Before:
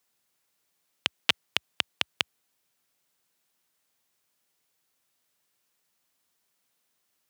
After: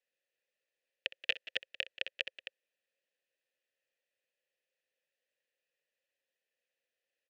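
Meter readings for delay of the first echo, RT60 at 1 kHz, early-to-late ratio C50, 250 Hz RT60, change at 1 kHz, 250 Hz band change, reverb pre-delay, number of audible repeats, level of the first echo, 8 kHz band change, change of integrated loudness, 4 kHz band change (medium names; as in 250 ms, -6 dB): 63 ms, no reverb, no reverb, no reverb, -20.0 dB, -17.0 dB, no reverb, 3, -18.0 dB, -20.0 dB, -8.0 dB, -10.0 dB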